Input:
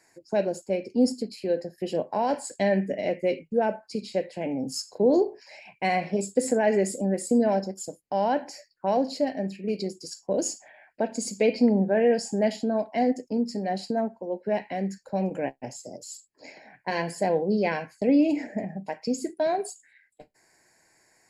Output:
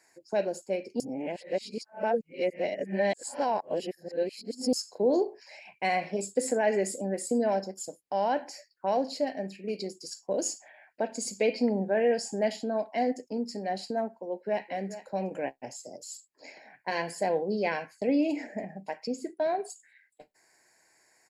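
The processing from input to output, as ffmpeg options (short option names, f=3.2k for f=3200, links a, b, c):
-filter_complex "[0:a]asplit=2[a][b];[b]afade=t=in:st=14.26:d=0.01,afade=t=out:st=14.69:d=0.01,aecho=0:1:420|840:0.211349|0.0317023[c];[a][c]amix=inputs=2:normalize=0,asettb=1/sr,asplit=3[d][e][f];[d]atrim=end=19.074[g];[e]atrim=start=19.07:end=19.7,asetpts=PTS-STARTPTS,afade=t=in:d=0.004:c=qsin,afade=t=out:st=0.626:d=0.004:c=qsin,highshelf=f=3.8k:g=-10.5[h];[f]atrim=start=19.696[i];[g][h]acrossfade=d=0.004:c1=hsin:c2=qsin[j];[j][i]acrossfade=d=0.004:c1=qsin:c2=hsin,asplit=3[k][l][m];[k]atrim=end=1.002[n];[l]atrim=start=0.998:end=4.732,asetpts=PTS-STARTPTS,areverse[o];[m]atrim=start=4.728[p];[n][o]acrossfade=d=0.004:c1=hsin:c2=hsin[q];[q][p]acrossfade=d=0.004:c1=hsin:c2=hsin,lowshelf=f=220:g=-11.5,volume=-1.5dB"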